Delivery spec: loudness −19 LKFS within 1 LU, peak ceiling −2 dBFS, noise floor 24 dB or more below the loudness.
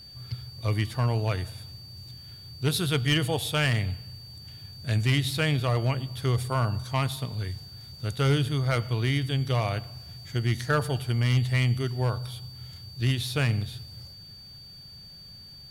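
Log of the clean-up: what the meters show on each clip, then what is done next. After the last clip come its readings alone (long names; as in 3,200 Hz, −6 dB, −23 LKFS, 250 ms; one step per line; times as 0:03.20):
share of clipped samples 0.3%; peaks flattened at −16.0 dBFS; interfering tone 4,600 Hz; level of the tone −45 dBFS; integrated loudness −27.5 LKFS; sample peak −16.0 dBFS; target loudness −19.0 LKFS
→ clipped peaks rebuilt −16 dBFS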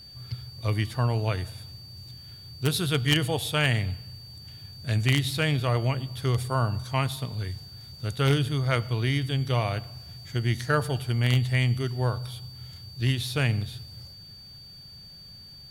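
share of clipped samples 0.0%; interfering tone 4,600 Hz; level of the tone −45 dBFS
→ notch filter 4,600 Hz, Q 30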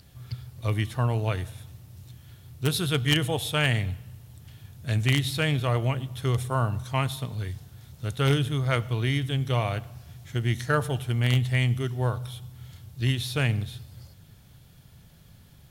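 interfering tone none found; integrated loudness −27.0 LKFS; sample peak −7.0 dBFS; target loudness −19.0 LKFS
→ level +8 dB
brickwall limiter −2 dBFS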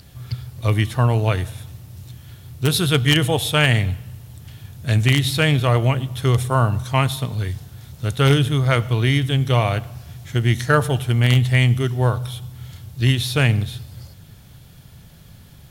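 integrated loudness −19.0 LKFS; sample peak −2.0 dBFS; background noise floor −45 dBFS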